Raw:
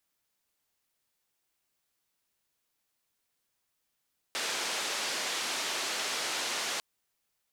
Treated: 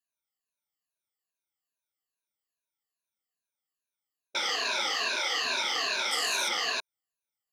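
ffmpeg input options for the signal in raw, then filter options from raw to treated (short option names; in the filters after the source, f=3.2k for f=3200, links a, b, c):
-f lavfi -i "anoisesrc=c=white:d=2.45:r=44100:seed=1,highpass=f=330,lowpass=f=5800,volume=-22.9dB"
-af "afftfilt=real='re*pow(10,22/40*sin(2*PI*(1.5*log(max(b,1)*sr/1024/100)/log(2)-(-2.4)*(pts-256)/sr)))':imag='im*pow(10,22/40*sin(2*PI*(1.5*log(max(b,1)*sr/1024/100)/log(2)-(-2.4)*(pts-256)/sr)))':win_size=1024:overlap=0.75,afwtdn=0.0178,lowshelf=f=230:g=-7"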